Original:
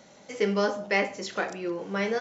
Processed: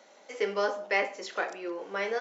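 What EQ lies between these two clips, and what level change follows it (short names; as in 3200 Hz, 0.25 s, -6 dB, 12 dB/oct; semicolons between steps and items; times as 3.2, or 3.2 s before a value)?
Bessel high-pass 450 Hz, order 4; high shelf 3800 Hz -7 dB; 0.0 dB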